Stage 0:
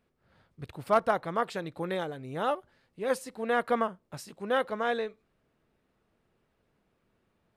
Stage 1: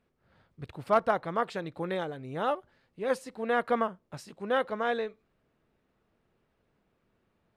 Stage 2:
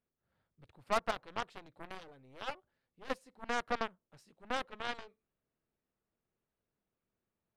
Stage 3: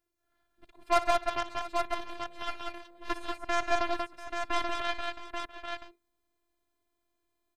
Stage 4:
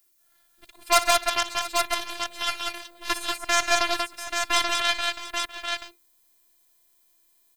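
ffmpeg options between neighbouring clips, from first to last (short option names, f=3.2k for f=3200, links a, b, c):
-af "highshelf=f=8.3k:g=-10.5"
-af "aeval=exprs='0.211*(cos(1*acos(clip(val(0)/0.211,-1,1)))-cos(1*PI/2))+0.0211*(cos(3*acos(clip(val(0)/0.211,-1,1)))-cos(3*PI/2))+0.0335*(cos(4*acos(clip(val(0)/0.211,-1,1)))-cos(4*PI/2))+0.0075*(cos(5*acos(clip(val(0)/0.211,-1,1)))-cos(5*PI/2))+0.0376*(cos(7*acos(clip(val(0)/0.211,-1,1)))-cos(7*PI/2))':c=same,volume=-7.5dB"
-af "afftfilt=real='hypot(re,im)*cos(PI*b)':imag='0':win_size=512:overlap=0.75,aecho=1:1:59|134|187|690|834:0.178|0.119|0.668|0.15|0.531,volume=9dB"
-filter_complex "[0:a]crystalizer=i=10:c=0,asplit=2[a][b];[b]volume=11dB,asoftclip=hard,volume=-11dB,volume=-9dB[c];[a][c]amix=inputs=2:normalize=0,volume=-2.5dB"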